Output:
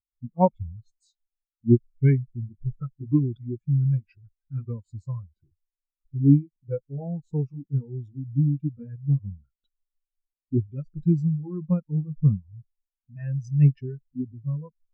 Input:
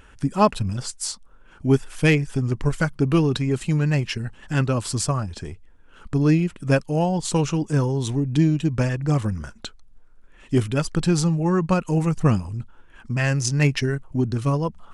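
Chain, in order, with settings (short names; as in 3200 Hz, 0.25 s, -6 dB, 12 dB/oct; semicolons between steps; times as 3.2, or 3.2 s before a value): gliding pitch shift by -2.5 st ending unshifted; spectral expander 2.5:1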